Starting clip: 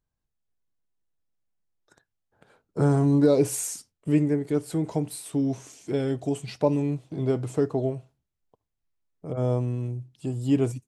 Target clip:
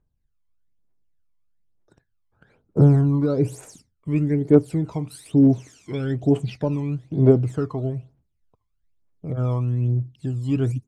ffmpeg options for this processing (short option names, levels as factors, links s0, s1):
-af "asetnsamples=n=441:p=0,asendcmd='3.01 lowpass f 1100;4.16 lowpass f 2800',lowpass=f=1800:p=1,aphaser=in_gain=1:out_gain=1:delay=1:decay=0.75:speed=1.1:type=triangular"